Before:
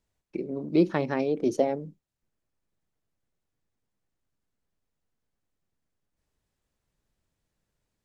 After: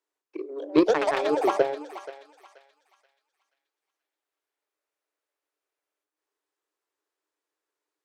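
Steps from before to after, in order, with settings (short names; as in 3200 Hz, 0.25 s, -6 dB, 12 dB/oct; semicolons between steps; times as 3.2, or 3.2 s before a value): rippled Chebyshev high-pass 290 Hz, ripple 6 dB; added harmonics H 2 -44 dB, 3 -17 dB, 7 -31 dB, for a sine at -14.5 dBFS; echoes that change speed 0.347 s, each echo +6 st, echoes 2; on a send: thinning echo 0.48 s, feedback 36%, high-pass 1100 Hz, level -11 dB; on the sum: gain +9 dB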